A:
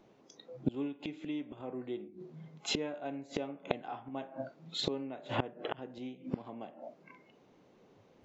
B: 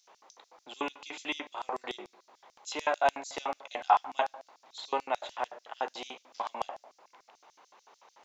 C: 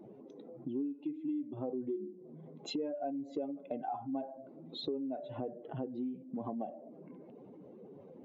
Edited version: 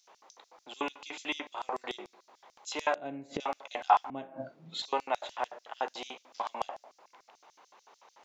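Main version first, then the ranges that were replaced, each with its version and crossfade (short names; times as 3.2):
B
2.95–3.4 from A
4.1–4.82 from A
not used: C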